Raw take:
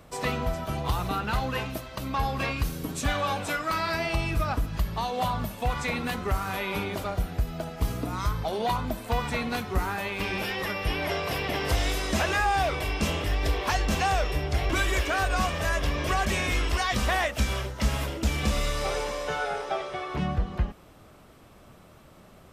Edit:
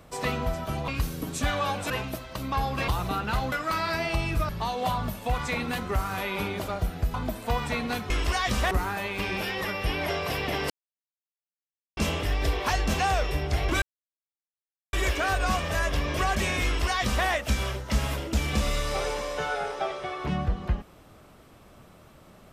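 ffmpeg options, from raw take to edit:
-filter_complex "[0:a]asplit=12[a][b][c][d][e][f][g][h][i][j][k][l];[a]atrim=end=0.882[m];[b]atrim=start=2.498:end=3.522[n];[c]atrim=start=1.518:end=2.502[o];[d]atrim=start=0.878:end=1.522[p];[e]atrim=start=3.518:end=4.492[q];[f]atrim=start=4.848:end=7.502[r];[g]atrim=start=8.758:end=9.722[s];[h]atrim=start=16.548:end=17.162[t];[i]atrim=start=9.718:end=11.71,asetpts=PTS-STARTPTS,afade=t=out:st=1.988:d=0.004:c=hsin[u];[j]atrim=start=11.71:end=12.98,asetpts=PTS-STARTPTS,volume=0[v];[k]atrim=start=12.98:end=14.83,asetpts=PTS-STARTPTS,afade=t=in:d=0.004:c=hsin,afade=t=out:st=1.846:d=0.004:c=hsin,apad=pad_dur=1.11[w];[l]atrim=start=14.83,asetpts=PTS-STARTPTS,afade=t=in:d=0.004:c=hsin[x];[m][n]acrossfade=d=0.004:c1=hsin:c2=hsin[y];[y][o]acrossfade=d=0.004:c1=hsin:c2=hsin[z];[z][p]acrossfade=d=0.004:c1=hsin:c2=hsin[aa];[aa][q]acrossfade=d=0.004:c1=hsin:c2=hsin[ab];[ab][r]acrossfade=d=0.004:c1=hsin:c2=hsin[ac];[ac][s]acrossfade=d=0.004:c1=hsin:c2=hsin[ad];[ad][t]acrossfade=d=0.004:c1=hsin:c2=hsin[ae];[u][v][w][x]concat=n=4:v=0:a=1[af];[ae][af]acrossfade=d=0.004:c1=hsin:c2=hsin"

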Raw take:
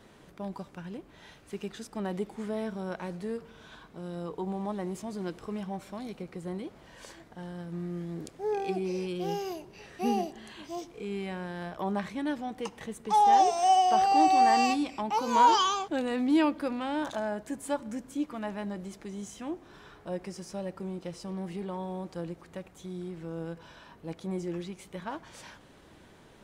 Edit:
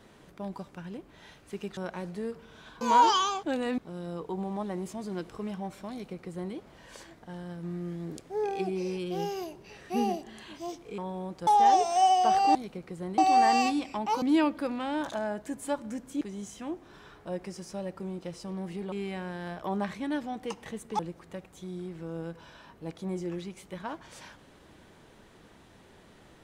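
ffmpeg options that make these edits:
-filter_complex "[0:a]asplit=12[a][b][c][d][e][f][g][h][i][j][k][l];[a]atrim=end=1.772[m];[b]atrim=start=2.828:end=3.872[n];[c]atrim=start=15.258:end=16.232[o];[d]atrim=start=3.868:end=11.072[p];[e]atrim=start=21.718:end=22.212[q];[f]atrim=start=13.138:end=14.222[r];[g]atrim=start=5.998:end=6.632[s];[h]atrim=start=14.218:end=15.262[t];[i]atrim=start=16.228:end=18.222[u];[j]atrim=start=19.008:end=21.722[v];[k]atrim=start=11.068:end=13.142[w];[l]atrim=start=22.208[x];[m][n]acrossfade=d=0.004:c1=hsin:c2=hsin[y];[y][o]acrossfade=d=0.004:c1=hsin:c2=hsin[z];[z][p]acrossfade=d=0.004:c1=hsin:c2=hsin[aa];[aa][q]acrossfade=d=0.004:c1=hsin:c2=hsin[ab];[ab][r]acrossfade=d=0.004:c1=hsin:c2=hsin[ac];[ac][s]acrossfade=d=0.004:c1=hsin:c2=hsin[ad];[ad][t]acrossfade=d=0.004:c1=hsin:c2=hsin[ae];[ae][u]acrossfade=d=0.004:c1=hsin:c2=hsin[af];[af][v]acrossfade=d=0.004:c1=hsin:c2=hsin[ag];[ag][w]acrossfade=d=0.004:c1=hsin:c2=hsin[ah];[ah][x]acrossfade=d=0.004:c1=hsin:c2=hsin"

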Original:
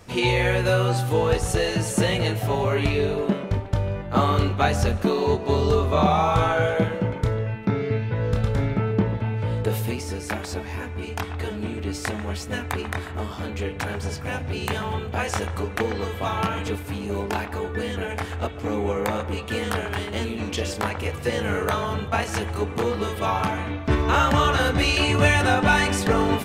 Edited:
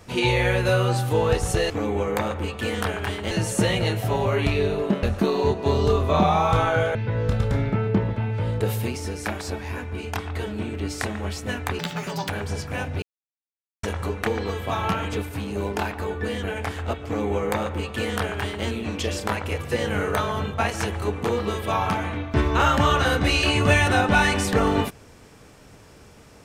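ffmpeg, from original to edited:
-filter_complex "[0:a]asplit=9[a][b][c][d][e][f][g][h][i];[a]atrim=end=1.702[j];[b]atrim=start=18.588:end=20.202[k];[c]atrim=start=1.698:end=3.422[l];[d]atrim=start=4.858:end=6.782[m];[e]atrim=start=7.988:end=12.834[n];[f]atrim=start=12.83:end=13.83,asetpts=PTS-STARTPTS,asetrate=87759,aresample=44100[o];[g]atrim=start=13.826:end=14.56,asetpts=PTS-STARTPTS,afade=t=out:st=0.73:d=0.004:c=hsin[p];[h]atrim=start=14.56:end=15.37,asetpts=PTS-STARTPTS,volume=0[q];[i]atrim=start=15.37,asetpts=PTS-STARTPTS,afade=t=in:d=0.004:c=hsin[r];[j][k]acrossfade=d=0.004:c1=hsin:c2=hsin[s];[s][l]acrossfade=d=0.004:c1=hsin:c2=hsin[t];[t][m]acrossfade=d=0.004:c1=hsin:c2=hsin[u];[u][n]acrossfade=d=0.004:c1=hsin:c2=hsin[v];[v][o]acrossfade=d=0.004:c1=hsin:c2=hsin[w];[p][q][r]concat=n=3:v=0:a=1[x];[w][x]acrossfade=d=0.004:c1=hsin:c2=hsin"

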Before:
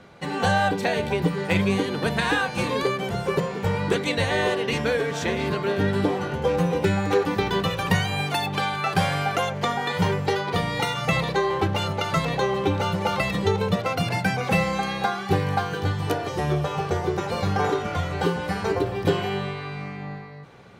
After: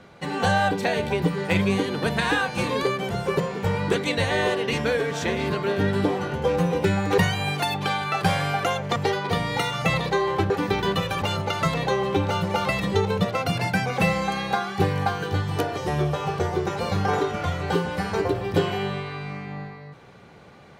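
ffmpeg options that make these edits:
-filter_complex "[0:a]asplit=5[a][b][c][d][e];[a]atrim=end=7.182[f];[b]atrim=start=7.898:end=9.682[g];[c]atrim=start=10.188:end=11.732[h];[d]atrim=start=7.178:end=7.902[i];[e]atrim=start=11.728[j];[f][g]acrossfade=d=0.004:c1=hsin:c2=hsin[k];[k][h]acrossfade=d=0.004:c1=hsin:c2=hsin[l];[l][i]acrossfade=d=0.004:c1=hsin:c2=hsin[m];[m][j]acrossfade=d=0.004:c1=hsin:c2=hsin"

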